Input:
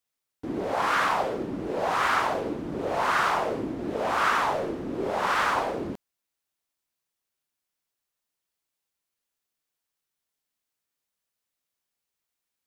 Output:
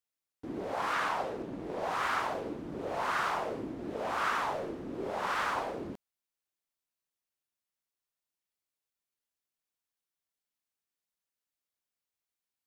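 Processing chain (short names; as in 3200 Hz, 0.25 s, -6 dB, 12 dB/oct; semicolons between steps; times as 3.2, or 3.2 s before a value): 0.93–1.83 Doppler distortion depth 0.51 ms; gain -7.5 dB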